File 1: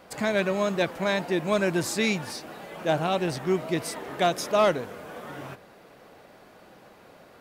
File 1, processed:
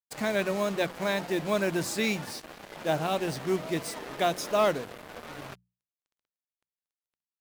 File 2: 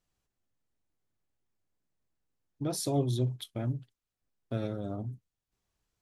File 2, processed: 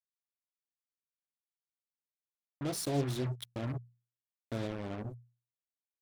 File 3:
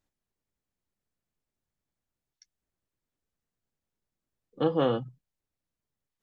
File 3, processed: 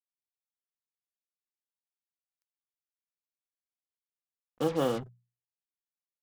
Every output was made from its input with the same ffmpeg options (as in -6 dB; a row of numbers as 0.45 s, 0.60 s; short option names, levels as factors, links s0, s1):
-af "acrusher=bits=5:mix=0:aa=0.5,bandreject=f=60:t=h:w=6,bandreject=f=120:t=h:w=6,bandreject=f=180:t=h:w=6,volume=0.708"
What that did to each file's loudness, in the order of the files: -3.0 LU, -3.5 LU, -3.0 LU